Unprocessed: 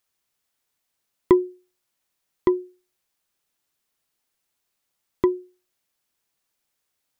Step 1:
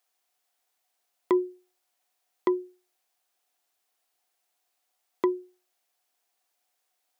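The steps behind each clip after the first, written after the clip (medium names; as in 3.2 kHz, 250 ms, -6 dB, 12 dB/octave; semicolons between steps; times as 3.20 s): high-pass 370 Hz 12 dB/octave; peaking EQ 730 Hz +13.5 dB 0.2 oct; peak limiter -14 dBFS, peak gain reduction 7 dB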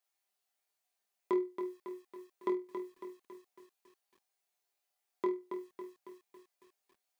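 feedback comb 200 Hz, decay 0.15 s, harmonics all, mix 80%; flutter echo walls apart 4.2 m, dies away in 0.26 s; bit-crushed delay 276 ms, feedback 55%, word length 10-bit, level -7.5 dB; trim -1.5 dB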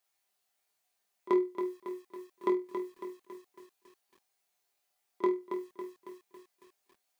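pre-echo 34 ms -20 dB; trim +5 dB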